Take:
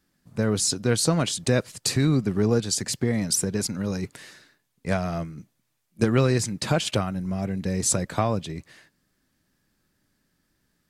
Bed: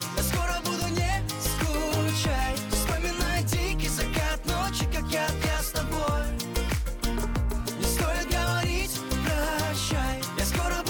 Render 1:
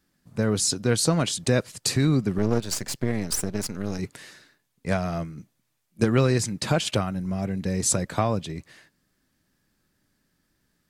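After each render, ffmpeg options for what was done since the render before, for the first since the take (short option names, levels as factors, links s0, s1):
-filter_complex "[0:a]asettb=1/sr,asplit=3[s0][s1][s2];[s0]atrim=end=2.384[s3];[s1]atrim=start=2.38:end=3.99,asetpts=PTS-STARTPTS,afade=t=in:d=0.004:c=qsin,afade=t=out:st=1.606:d=0.004:c=qsin,aeval=exprs='if(lt(val(0),0),0.251*val(0),val(0))':c=same[s4];[s2]atrim=start=3.986[s5];[s3][s4]acrossfade=d=0.004:c1=hsin:c2=qsin[s6];[s6][s5]acrossfade=d=0.004:c1=qsin:c2=hsin"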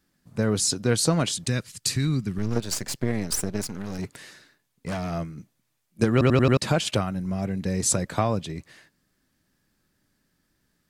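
-filter_complex "[0:a]asettb=1/sr,asplit=3[s0][s1][s2];[s0]atrim=end=1.464[s3];[s1]atrim=start=1.46:end=2.56,asetpts=PTS-STARTPTS,afade=t=in:d=0.004:c=qsin,afade=t=out:st=1.096:d=0.004:c=qsin,equalizer=f=600:w=0.66:g=-12.5[s4];[s2]atrim=start=2.556[s5];[s3][s4]acrossfade=d=0.004:c1=hsin:c2=qsin[s6];[s6][s5]acrossfade=d=0.004:c1=qsin:c2=hsin,asettb=1/sr,asplit=3[s7][s8][s9];[s7]atrim=end=3.644[s10];[s8]atrim=start=3.64:end=5.11,asetpts=PTS-STARTPTS,afade=t=in:d=0.004:c=qsin,afade=t=out:st=1.466:d=0.004:c=qsin,asoftclip=type=hard:threshold=0.0501[s11];[s9]atrim=start=5.106[s12];[s10][s11]acrossfade=d=0.004:c1=hsin:c2=qsin[s13];[s13][s12]acrossfade=d=0.004:c1=qsin:c2=hsin,asplit=6[s14][s15][s16][s17][s18][s19];[s14]atrim=end=6.212[s20];[s15]atrim=start=6.118:end=6.212[s21];[s16]atrim=start=6.118:end=6.212[s22];[s17]atrim=start=6.118:end=6.212[s23];[s18]atrim=start=6.118:end=6.212[s24];[s19]atrim=start=6.568[s25];[s20][s21]acrossfade=d=0.004:c1=hsin:c2=hsin[s26];[s26][s22]acrossfade=d=0.004:c1=hsin:c2=hsin[s27];[s27][s23]acrossfade=d=0.004:c1=hsin:c2=hsin[s28];[s28][s24]acrossfade=d=0.004:c1=hsin:c2=hsin[s29];[s29][s25]acrossfade=d=0.004:c1=hsin:c2=hsin"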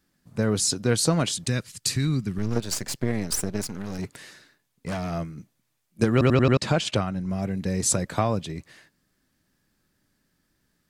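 -filter_complex "[0:a]asettb=1/sr,asplit=3[s0][s1][s2];[s0]atrim=end=6.344[s3];[s1]atrim=start=6.34:end=7.3,asetpts=PTS-STARTPTS,afade=t=in:d=0.004:c=qsin,afade=t=out:st=0.956:d=0.004:c=qsin,lowpass=7500[s4];[s2]atrim=start=7.296[s5];[s3][s4]acrossfade=d=0.004:c1=hsin:c2=qsin[s6];[s6][s5]acrossfade=d=0.004:c1=qsin:c2=hsin"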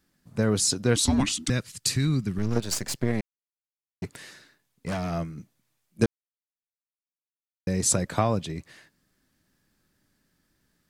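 -filter_complex "[0:a]asettb=1/sr,asplit=3[s0][s1][s2];[s0]atrim=end=0.964[s3];[s1]atrim=start=0.96:end=1.5,asetpts=PTS-STARTPTS,afade=t=in:d=0.004:c=qsin,afade=t=out:st=0.536:d=0.004:c=qsin,afreqshift=-410[s4];[s2]atrim=start=1.496[s5];[s3][s4]acrossfade=d=0.004:c1=hsin:c2=qsin[s6];[s6][s5]acrossfade=d=0.004:c1=qsin:c2=hsin,asplit=5[s7][s8][s9][s10][s11];[s7]atrim=end=3.21,asetpts=PTS-STARTPTS,afade=t=out:st=3.206:d=0.004:c=hsin[s12];[s8]atrim=start=3.21:end=4.02,asetpts=PTS-STARTPTS,volume=0[s13];[s9]atrim=start=4.02:end=6.06,asetpts=PTS-STARTPTS,afade=t=in:d=0.004:c=hsin,afade=t=out:st=2.036:d=0.004:c=hsin[s14];[s10]atrim=start=6.06:end=7.67,asetpts=PTS-STARTPTS,volume=0[s15];[s11]atrim=start=7.67,asetpts=PTS-STARTPTS,afade=t=in:d=0.004:c=hsin[s16];[s12][s13][s14][s15][s16]concat=n=5:v=0:a=1"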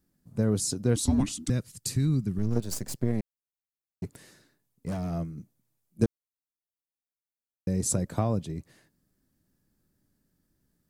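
-af "equalizer=f=2400:w=0.33:g=-12.5"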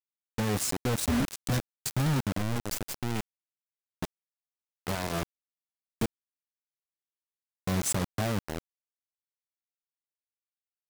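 -af "asoftclip=type=tanh:threshold=0.0501,acrusher=bits=4:mix=0:aa=0.000001"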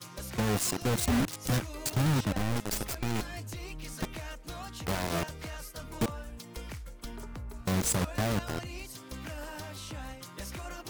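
-filter_complex "[1:a]volume=0.2[s0];[0:a][s0]amix=inputs=2:normalize=0"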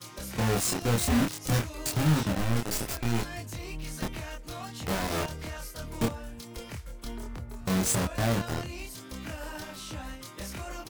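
-filter_complex "[0:a]asplit=2[s0][s1];[s1]adelay=26,volume=0.794[s2];[s0][s2]amix=inputs=2:normalize=0"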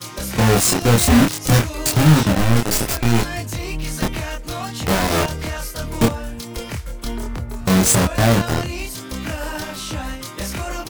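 -af "volume=3.98"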